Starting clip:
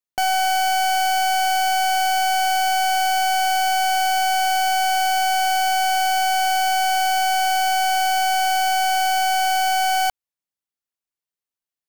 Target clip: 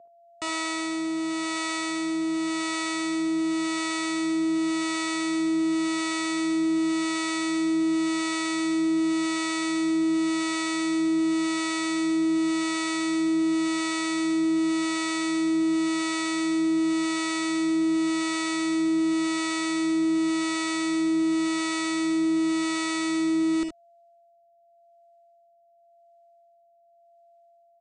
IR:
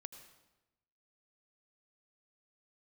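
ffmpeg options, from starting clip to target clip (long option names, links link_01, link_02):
-filter_complex "[0:a]aeval=exprs='val(0)+0.0112*sin(2*PI*1600*n/s)':channel_layout=same,acrossover=split=1300[link_01][link_02];[link_01]aeval=exprs='val(0)*(1-0.7/2+0.7/2*cos(2*PI*2.1*n/s))':channel_layout=same[link_03];[link_02]aeval=exprs='val(0)*(1-0.7/2-0.7/2*cos(2*PI*2.1*n/s))':channel_layout=same[link_04];[link_03][link_04]amix=inputs=2:normalize=0,asetrate=18846,aresample=44100,asubboost=boost=10.5:cutoff=160,highpass=frequency=92:poles=1,lowshelf=frequency=300:gain=-9,bandreject=frequency=5700:width=18,aecho=1:1:55|74:0.335|0.376,volume=-3dB"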